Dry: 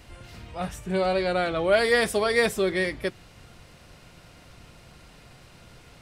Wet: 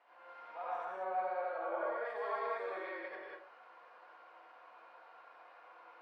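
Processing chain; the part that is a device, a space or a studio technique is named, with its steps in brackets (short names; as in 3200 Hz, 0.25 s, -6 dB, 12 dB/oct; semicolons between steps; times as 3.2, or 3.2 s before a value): HPF 890 Hz 24 dB/oct; television next door (compressor 5:1, threshold -36 dBFS, peak gain reduction 14 dB; LPF 440 Hz 12 dB/oct; reverb RT60 0.45 s, pre-delay 68 ms, DRR -6 dB); 0.85–2.05 LPF 1300 Hz 6 dB/oct; bell 290 Hz -4 dB 2.6 oct; non-linear reverb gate 0.21 s rising, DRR -0.5 dB; gain +9 dB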